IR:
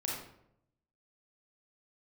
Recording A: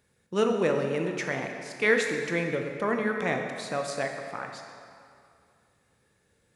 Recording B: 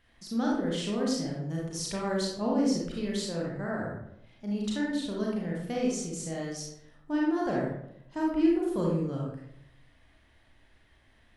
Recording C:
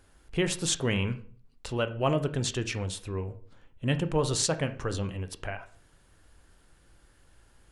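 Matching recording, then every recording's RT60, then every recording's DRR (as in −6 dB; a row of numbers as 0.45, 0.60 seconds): B; 2.4, 0.75, 0.45 seconds; 3.0, −3.5, 9.5 decibels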